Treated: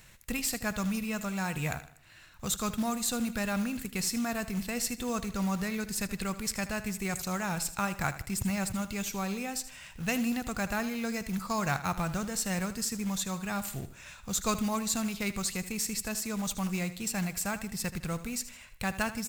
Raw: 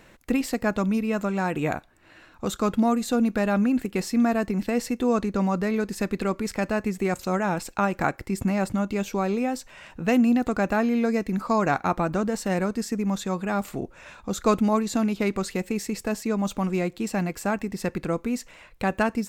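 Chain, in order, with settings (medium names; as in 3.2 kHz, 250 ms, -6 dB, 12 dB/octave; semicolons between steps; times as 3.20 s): FFT filter 140 Hz 0 dB, 300 Hz -16 dB, 9.5 kHz +7 dB; short-mantissa float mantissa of 2-bit; feedback delay 78 ms, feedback 41%, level -14 dB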